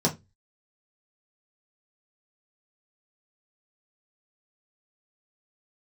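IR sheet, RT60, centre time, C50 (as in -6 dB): 0.20 s, 12 ms, 16.5 dB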